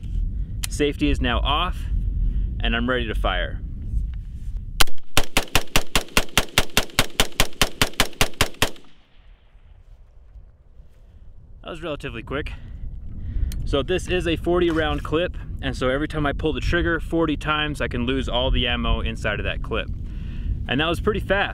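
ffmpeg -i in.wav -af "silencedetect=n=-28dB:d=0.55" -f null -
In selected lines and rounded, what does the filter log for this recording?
silence_start: 8.76
silence_end: 11.68 | silence_duration: 2.91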